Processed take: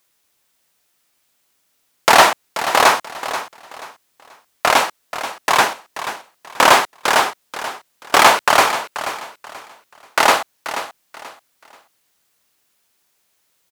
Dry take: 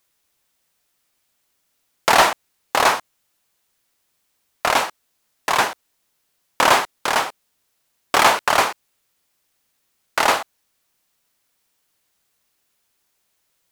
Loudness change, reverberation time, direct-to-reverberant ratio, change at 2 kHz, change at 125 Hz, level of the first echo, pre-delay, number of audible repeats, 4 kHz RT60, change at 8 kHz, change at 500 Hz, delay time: +2.5 dB, none, none, +4.5 dB, +2.0 dB, -12.0 dB, none, 3, none, +4.5 dB, +4.0 dB, 0.483 s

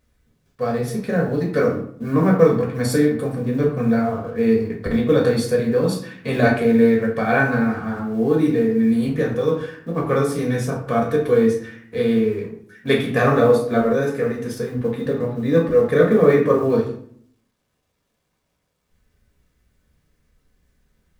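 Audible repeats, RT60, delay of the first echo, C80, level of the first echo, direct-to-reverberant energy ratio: none, 0.60 s, none, 10.5 dB, none, -1.0 dB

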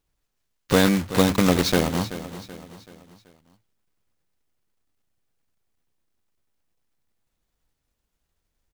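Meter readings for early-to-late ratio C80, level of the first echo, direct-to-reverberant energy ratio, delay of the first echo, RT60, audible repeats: none, -14.0 dB, none, 0.381 s, none, 4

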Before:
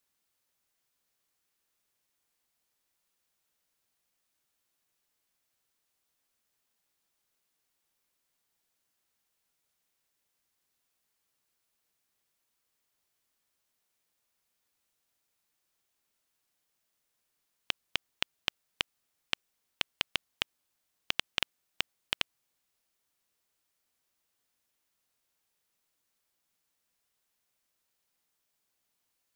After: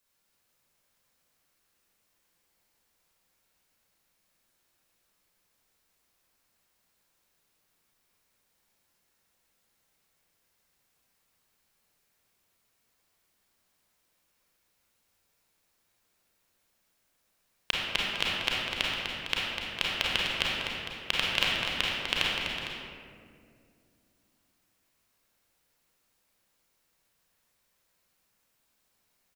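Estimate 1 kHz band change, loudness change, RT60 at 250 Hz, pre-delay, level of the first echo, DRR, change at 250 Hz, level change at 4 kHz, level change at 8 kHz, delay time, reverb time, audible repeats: +8.5 dB, +6.0 dB, 3.4 s, 29 ms, -6.0 dB, -6.0 dB, +10.0 dB, +6.5 dB, +5.5 dB, 0.249 s, 2.3 s, 2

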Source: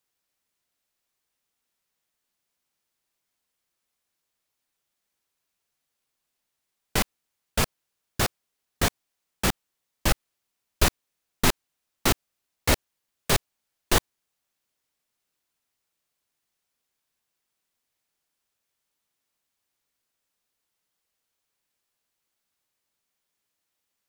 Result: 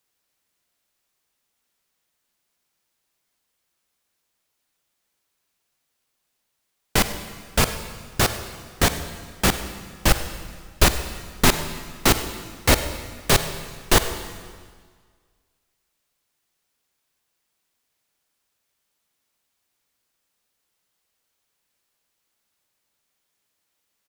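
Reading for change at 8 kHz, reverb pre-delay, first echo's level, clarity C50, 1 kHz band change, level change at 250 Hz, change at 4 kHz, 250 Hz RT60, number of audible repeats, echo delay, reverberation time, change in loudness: +5.5 dB, 39 ms, -19.0 dB, 9.5 dB, +5.5 dB, +5.5 dB, +5.5 dB, 1.7 s, 1, 0.1 s, 1.7 s, +4.5 dB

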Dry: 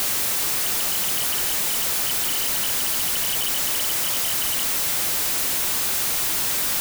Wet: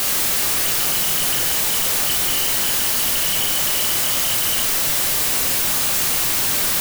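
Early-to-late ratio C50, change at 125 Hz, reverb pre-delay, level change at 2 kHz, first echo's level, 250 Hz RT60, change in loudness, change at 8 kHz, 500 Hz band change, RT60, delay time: 6.0 dB, +6.5 dB, 6 ms, +4.5 dB, none, 1.4 s, +3.5 dB, +3.5 dB, +5.0 dB, 0.85 s, none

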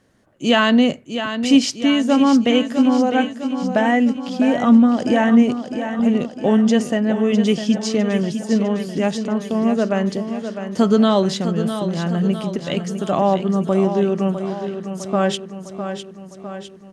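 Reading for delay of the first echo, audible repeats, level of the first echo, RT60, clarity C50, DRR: 0.655 s, 6, -9.0 dB, none, none, none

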